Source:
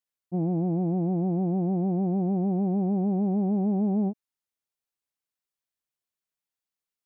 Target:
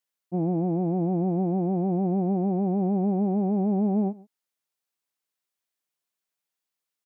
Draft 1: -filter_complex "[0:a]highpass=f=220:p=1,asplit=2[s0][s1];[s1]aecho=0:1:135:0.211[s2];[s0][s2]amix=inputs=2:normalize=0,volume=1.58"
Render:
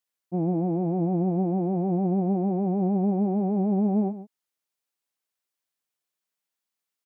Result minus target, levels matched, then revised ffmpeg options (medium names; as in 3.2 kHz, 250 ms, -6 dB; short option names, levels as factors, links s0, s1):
echo-to-direct +9 dB
-filter_complex "[0:a]highpass=f=220:p=1,asplit=2[s0][s1];[s1]aecho=0:1:135:0.075[s2];[s0][s2]amix=inputs=2:normalize=0,volume=1.58"